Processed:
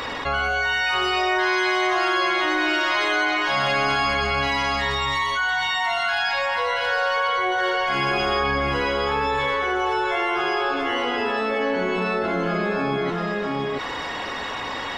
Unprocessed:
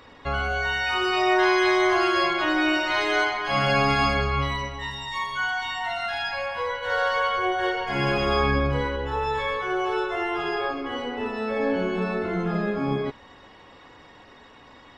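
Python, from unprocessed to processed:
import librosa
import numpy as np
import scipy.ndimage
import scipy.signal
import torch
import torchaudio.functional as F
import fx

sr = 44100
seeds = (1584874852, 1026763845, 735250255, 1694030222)

p1 = fx.low_shelf(x, sr, hz=390.0, db=-9.5)
p2 = p1 + fx.echo_single(p1, sr, ms=680, db=-6.5, dry=0)
y = fx.env_flatten(p2, sr, amount_pct=70)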